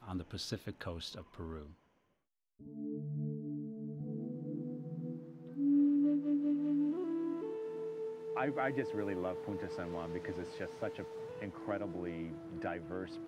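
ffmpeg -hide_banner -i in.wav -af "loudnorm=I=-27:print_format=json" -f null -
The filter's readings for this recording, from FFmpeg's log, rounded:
"input_i" : "-38.9",
"input_tp" : "-23.1",
"input_lra" : "9.8",
"input_thresh" : "-49.1",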